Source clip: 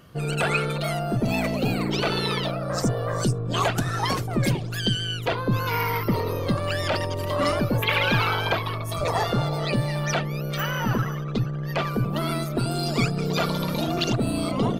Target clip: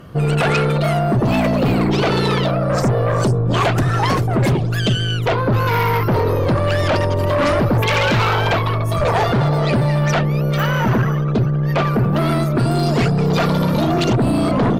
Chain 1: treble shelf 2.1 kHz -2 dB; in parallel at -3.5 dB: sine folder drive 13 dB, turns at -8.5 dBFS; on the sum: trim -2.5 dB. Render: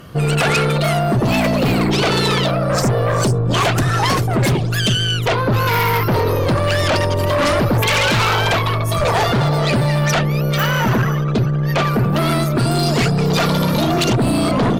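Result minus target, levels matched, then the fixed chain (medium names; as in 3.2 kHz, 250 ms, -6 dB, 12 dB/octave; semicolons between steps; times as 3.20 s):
4 kHz band +4.5 dB
treble shelf 2.1 kHz -10.5 dB; in parallel at -3.5 dB: sine folder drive 13 dB, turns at -8.5 dBFS; on the sum: trim -2.5 dB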